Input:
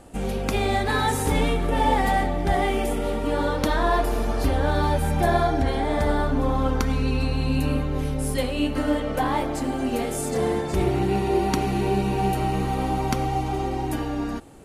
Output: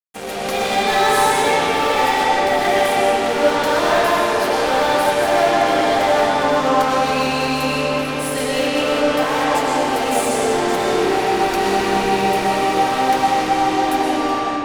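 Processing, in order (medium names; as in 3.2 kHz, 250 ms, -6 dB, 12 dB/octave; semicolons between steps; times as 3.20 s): high-pass 450 Hz 12 dB/octave; fuzz box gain 30 dB, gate -39 dBFS; reverberation RT60 2.9 s, pre-delay 80 ms, DRR -6.5 dB; trim -7.5 dB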